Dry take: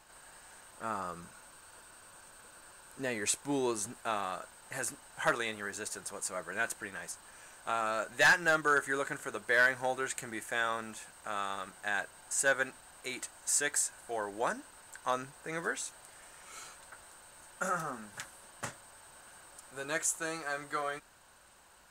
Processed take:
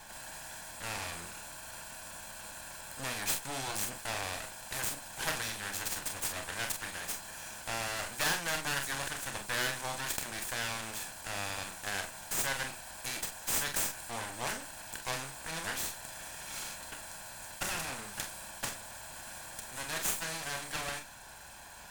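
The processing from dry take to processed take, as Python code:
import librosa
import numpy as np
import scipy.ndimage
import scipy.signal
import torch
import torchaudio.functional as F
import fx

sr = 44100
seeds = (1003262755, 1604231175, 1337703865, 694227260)

y = fx.lower_of_two(x, sr, delay_ms=1.2)
y = fx.room_early_taps(y, sr, ms=(30, 44), db=(-9.5, -10.0))
y = fx.spectral_comp(y, sr, ratio=2.0)
y = y * 10.0 ** (-2.0 / 20.0)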